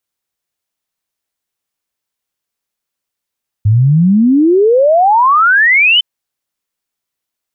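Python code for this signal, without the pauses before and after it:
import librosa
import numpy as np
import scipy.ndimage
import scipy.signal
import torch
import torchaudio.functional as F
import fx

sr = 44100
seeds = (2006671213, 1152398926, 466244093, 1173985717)

y = fx.ess(sr, length_s=2.36, from_hz=100.0, to_hz=3100.0, level_db=-5.5)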